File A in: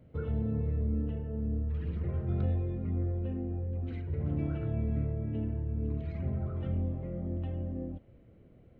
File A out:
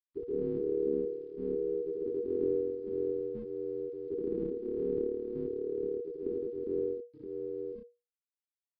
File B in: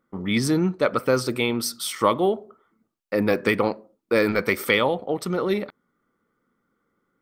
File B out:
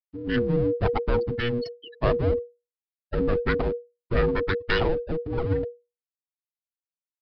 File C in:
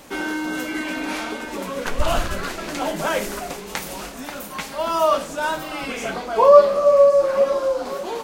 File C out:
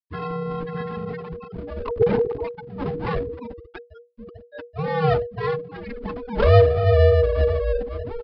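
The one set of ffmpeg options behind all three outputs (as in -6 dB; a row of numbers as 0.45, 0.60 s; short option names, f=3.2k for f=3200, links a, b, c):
-filter_complex "[0:a]afftfilt=real='re*gte(hypot(re,im),0.158)':imag='im*gte(hypot(re,im),0.158)':win_size=1024:overlap=0.75,asplit=2[a][b];[b]acontrast=83,volume=-1dB[c];[a][c]amix=inputs=2:normalize=0,aeval=exprs='max(val(0),0)':c=same,acrusher=bits=10:mix=0:aa=0.000001,afreqshift=-480,aresample=11025,aresample=44100,volume=-7dB"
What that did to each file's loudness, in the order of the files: -1.0, -3.0, -2.0 LU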